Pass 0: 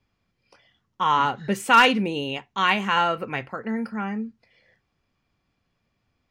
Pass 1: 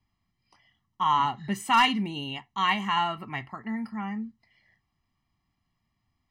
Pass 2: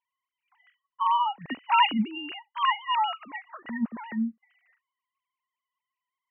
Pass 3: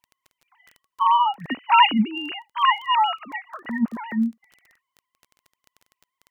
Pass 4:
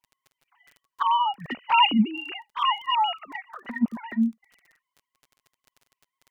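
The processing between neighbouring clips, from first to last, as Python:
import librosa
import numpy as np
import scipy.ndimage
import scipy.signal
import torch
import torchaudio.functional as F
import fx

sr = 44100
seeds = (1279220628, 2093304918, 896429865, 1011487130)

y1 = x + 0.93 * np.pad(x, (int(1.0 * sr / 1000.0), 0))[:len(x)]
y1 = y1 * 10.0 ** (-7.5 / 20.0)
y2 = fx.sine_speech(y1, sr)
y3 = fx.dmg_crackle(y2, sr, seeds[0], per_s=16.0, level_db=-41.0)
y3 = y3 * 10.0 ** (6.0 / 20.0)
y4 = fx.env_flanger(y3, sr, rest_ms=7.4, full_db=-17.0)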